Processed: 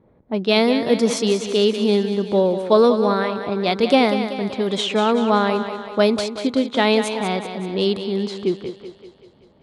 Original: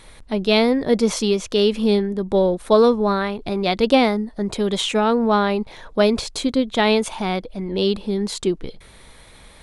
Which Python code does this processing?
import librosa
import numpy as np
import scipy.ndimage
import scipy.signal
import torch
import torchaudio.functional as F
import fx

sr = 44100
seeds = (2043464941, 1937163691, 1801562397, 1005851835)

p1 = fx.env_lowpass(x, sr, base_hz=390.0, full_db=-16.0)
p2 = scipy.signal.sosfilt(scipy.signal.butter(2, 130.0, 'highpass', fs=sr, output='sos'), p1)
y = p2 + fx.echo_thinned(p2, sr, ms=191, feedback_pct=57, hz=190.0, wet_db=-9.0, dry=0)